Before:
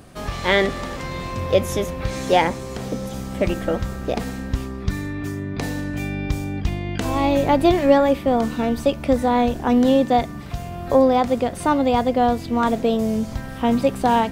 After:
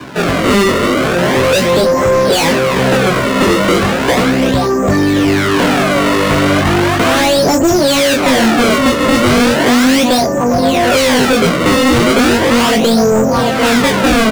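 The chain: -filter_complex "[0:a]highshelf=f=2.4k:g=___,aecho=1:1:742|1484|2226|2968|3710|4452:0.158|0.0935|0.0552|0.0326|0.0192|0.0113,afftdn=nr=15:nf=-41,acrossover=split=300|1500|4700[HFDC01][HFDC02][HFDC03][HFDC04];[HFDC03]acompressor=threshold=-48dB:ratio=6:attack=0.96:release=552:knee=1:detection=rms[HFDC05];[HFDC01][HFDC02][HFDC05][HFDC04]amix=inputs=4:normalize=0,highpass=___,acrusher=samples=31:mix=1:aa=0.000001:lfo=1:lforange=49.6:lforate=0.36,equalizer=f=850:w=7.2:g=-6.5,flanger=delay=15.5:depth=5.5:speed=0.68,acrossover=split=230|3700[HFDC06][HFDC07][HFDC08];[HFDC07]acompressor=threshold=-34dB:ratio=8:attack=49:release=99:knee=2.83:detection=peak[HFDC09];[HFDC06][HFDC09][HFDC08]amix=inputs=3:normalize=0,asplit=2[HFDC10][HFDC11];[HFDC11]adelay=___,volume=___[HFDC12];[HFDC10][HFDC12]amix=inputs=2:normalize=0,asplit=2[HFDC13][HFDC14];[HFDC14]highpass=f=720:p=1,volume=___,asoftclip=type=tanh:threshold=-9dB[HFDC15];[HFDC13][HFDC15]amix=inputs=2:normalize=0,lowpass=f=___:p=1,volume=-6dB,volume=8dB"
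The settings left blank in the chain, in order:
-7.5, 77, 23, -12dB, 30dB, 2.5k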